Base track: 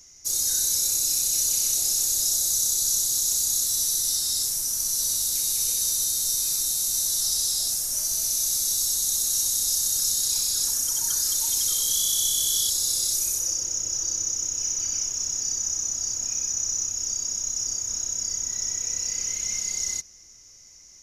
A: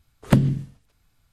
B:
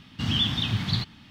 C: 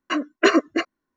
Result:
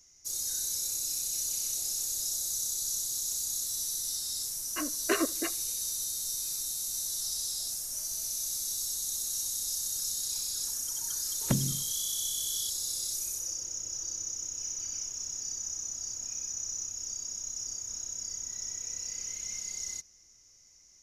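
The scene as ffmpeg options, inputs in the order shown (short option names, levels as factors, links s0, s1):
-filter_complex "[0:a]volume=0.335[s0];[3:a]aecho=1:1:77|154|231:0.0668|0.0267|0.0107,atrim=end=1.16,asetpts=PTS-STARTPTS,volume=0.251,afade=t=in:d=0.004:c=hsin,afade=t=out:st=1.156:d=0.004:c=hsin,adelay=4660[s1];[1:a]atrim=end=1.32,asetpts=PTS-STARTPTS,volume=0.251,afade=t=in:d=0.004:c=hsin,afade=t=out:st=1.316:d=0.004:c=hsin,adelay=11180[s2];[s0][s1][s2]amix=inputs=3:normalize=0"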